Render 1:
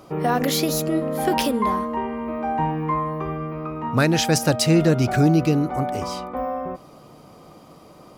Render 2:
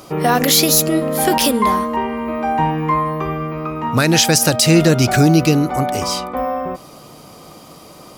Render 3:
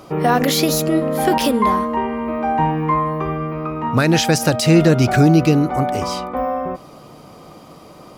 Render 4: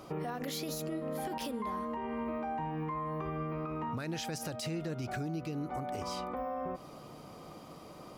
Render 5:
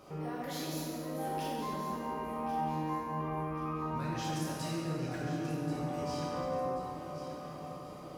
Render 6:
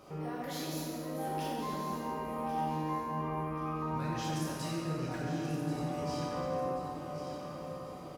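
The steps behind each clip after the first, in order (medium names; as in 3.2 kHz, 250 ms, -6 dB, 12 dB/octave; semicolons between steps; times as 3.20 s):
treble shelf 2.5 kHz +10.5 dB; loudness maximiser +6 dB; trim -1 dB
treble shelf 3.6 kHz -10.5 dB
compression 12:1, threshold -24 dBFS, peak gain reduction 16.5 dB; peak limiter -20 dBFS, peak gain reduction 5.5 dB; trim -8.5 dB
on a send: echo whose repeats swap between lows and highs 542 ms, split 920 Hz, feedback 65%, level -7.5 dB; on the sum: plate-style reverb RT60 2.8 s, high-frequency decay 0.55×, DRR -6.5 dB; trim -7.5 dB
delay 1174 ms -12.5 dB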